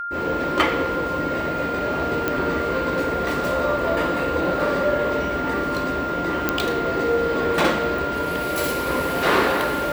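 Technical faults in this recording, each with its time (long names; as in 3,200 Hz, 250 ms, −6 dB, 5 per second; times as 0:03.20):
whistle 1,400 Hz −26 dBFS
0:02.28: click −8 dBFS
0:06.49: click −4 dBFS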